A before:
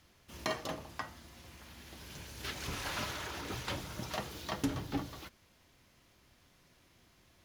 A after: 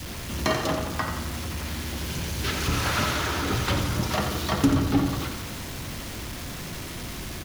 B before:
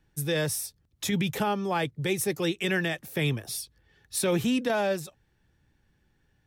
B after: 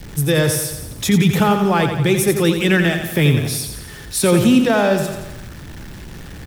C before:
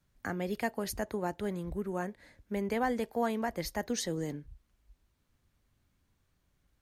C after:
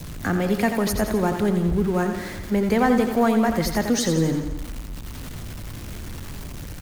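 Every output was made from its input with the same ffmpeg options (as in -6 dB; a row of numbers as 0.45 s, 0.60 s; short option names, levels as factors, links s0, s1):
-filter_complex "[0:a]aeval=exprs='val(0)+0.5*0.00891*sgn(val(0))':c=same,adynamicequalizer=threshold=0.00316:dfrequency=1300:dqfactor=4.5:tfrequency=1300:tqfactor=4.5:attack=5:release=100:ratio=0.375:range=2.5:mode=boostabove:tftype=bell,aecho=1:1:87|174|261|348|435|522|609:0.422|0.236|0.132|0.0741|0.0415|0.0232|0.013,acrossover=split=350[s0][s1];[s0]acontrast=27[s2];[s2][s1]amix=inputs=2:normalize=0,volume=2.51"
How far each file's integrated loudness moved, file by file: +12.5 LU, +12.0 LU, +13.0 LU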